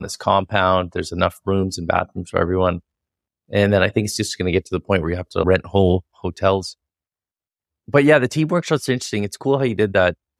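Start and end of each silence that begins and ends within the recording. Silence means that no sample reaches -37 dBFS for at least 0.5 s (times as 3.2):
2.79–3.51
6.73–7.88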